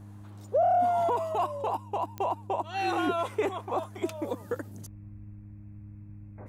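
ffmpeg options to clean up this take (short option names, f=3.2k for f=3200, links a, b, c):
-af "adeclick=t=4,bandreject=f=102.2:t=h:w=4,bandreject=f=204.4:t=h:w=4,bandreject=f=306.6:t=h:w=4"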